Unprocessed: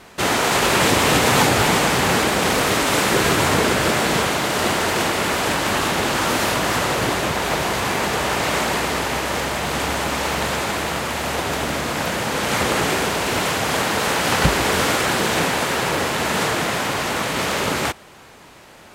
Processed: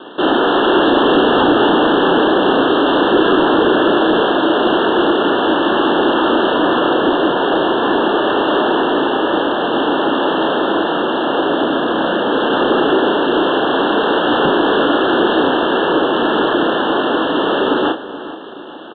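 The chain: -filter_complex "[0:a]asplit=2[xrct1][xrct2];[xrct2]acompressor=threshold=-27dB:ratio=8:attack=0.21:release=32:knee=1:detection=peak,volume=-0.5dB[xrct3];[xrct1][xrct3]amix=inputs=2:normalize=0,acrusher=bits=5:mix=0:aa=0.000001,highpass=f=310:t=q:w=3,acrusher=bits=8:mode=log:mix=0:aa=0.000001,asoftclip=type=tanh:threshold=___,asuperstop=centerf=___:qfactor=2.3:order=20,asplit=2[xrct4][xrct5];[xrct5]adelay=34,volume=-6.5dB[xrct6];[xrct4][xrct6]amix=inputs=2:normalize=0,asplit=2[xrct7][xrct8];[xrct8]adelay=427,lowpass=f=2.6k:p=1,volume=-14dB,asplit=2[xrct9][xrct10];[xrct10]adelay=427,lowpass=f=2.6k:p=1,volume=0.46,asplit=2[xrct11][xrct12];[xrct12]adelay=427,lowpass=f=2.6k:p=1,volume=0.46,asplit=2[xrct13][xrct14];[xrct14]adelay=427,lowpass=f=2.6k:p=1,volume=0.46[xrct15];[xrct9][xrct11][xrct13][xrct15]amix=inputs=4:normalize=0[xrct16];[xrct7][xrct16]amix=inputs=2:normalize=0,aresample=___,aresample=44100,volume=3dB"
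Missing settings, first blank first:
-9.5dB, 2200, 8000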